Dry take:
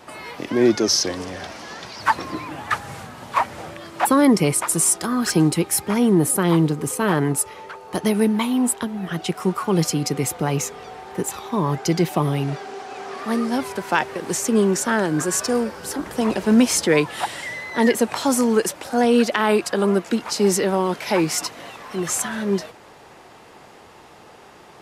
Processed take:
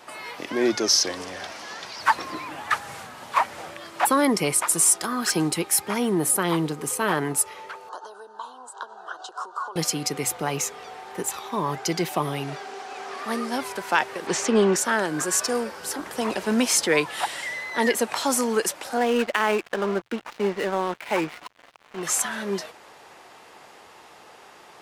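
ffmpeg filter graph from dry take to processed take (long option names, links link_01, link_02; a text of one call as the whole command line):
ffmpeg -i in.wav -filter_complex "[0:a]asettb=1/sr,asplit=3[link_01][link_02][link_03];[link_01]atrim=end=7.894[link_04];[link_02]atrim=start=7.89:end=9.76,asetpts=PTS-STARTPTS,afade=type=in:duration=0.004:curve=qsin,afade=type=out:start_time=1.866:duration=0.004:curve=qsin,acompressor=threshold=-27dB:ratio=12:attack=3.2:release=140:knee=1:detection=peak,asuperstop=centerf=2200:order=4:qfactor=1,highpass=frequency=460:width=0.5412,highpass=frequency=460:width=1.3066,equalizer=frequency=1000:width_type=q:width=4:gain=7,equalizer=frequency=1500:width_type=q:width=4:gain=10,equalizer=frequency=3400:width_type=q:width=4:gain=-4,equalizer=frequency=5300:width_type=q:width=4:gain=-6,lowpass=frequency=7000:width=0.5412,lowpass=frequency=7000:width=1.3066[link_05];[link_03]atrim=start=9.756[link_06];[link_04][link_05]acrossfade=duration=0.004:curve1=hsin:curve2=qsin[link_07];[link_07][link_06]acrossfade=duration=0.004:curve1=qsin:curve2=hsin,asettb=1/sr,asplit=3[link_08][link_09][link_10];[link_08]atrim=end=14.274[link_11];[link_09]atrim=start=14.27:end=14.76,asetpts=PTS-STARTPTS,afade=type=in:duration=0.004:curve=qsin,afade=type=out:start_time=0.486:duration=0.004:curve=qsin,lowpass=4500,acontrast=43[link_12];[link_10]atrim=start=14.756[link_13];[link_11][link_12]acrossfade=duration=0.004:curve1=hsin:curve2=qsin[link_14];[link_14][link_13]acrossfade=duration=0.004:curve1=qsin:curve2=hsin,asettb=1/sr,asplit=3[link_15][link_16][link_17];[link_15]atrim=end=18.974[link_18];[link_16]atrim=start=18.97:end=22.03,asetpts=PTS-STARTPTS,afade=type=in:duration=0.004:curve=qsin,afade=type=out:start_time=3.056:duration=0.004:curve=qsin,lowpass=frequency=3300:width=0.5412,lowpass=frequency=3300:width=1.3066,adynamicsmooth=sensitivity=7.5:basefreq=930,aeval=exprs='sgn(val(0))*max(abs(val(0))-0.0168,0)':channel_layout=same[link_19];[link_17]atrim=start=22.026[link_20];[link_18][link_19]acrossfade=duration=0.004:curve1=hsin:curve2=qsin[link_21];[link_21][link_20]acrossfade=duration=0.004:curve1=qsin:curve2=hsin,lowshelf=frequency=350:gain=-12,bandreject=frequency=60:width_type=h:width=6,bandreject=frequency=120:width_type=h:width=6" out.wav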